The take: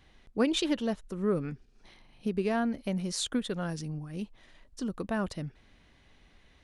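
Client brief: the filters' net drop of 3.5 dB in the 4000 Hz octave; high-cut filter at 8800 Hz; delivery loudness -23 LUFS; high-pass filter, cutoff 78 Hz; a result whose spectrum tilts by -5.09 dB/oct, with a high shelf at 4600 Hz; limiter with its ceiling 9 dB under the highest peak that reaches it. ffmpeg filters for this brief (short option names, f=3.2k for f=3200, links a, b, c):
-af "highpass=78,lowpass=8.8k,equalizer=f=4k:t=o:g=-7.5,highshelf=f=4.6k:g=7,volume=12dB,alimiter=limit=-12dB:level=0:latency=1"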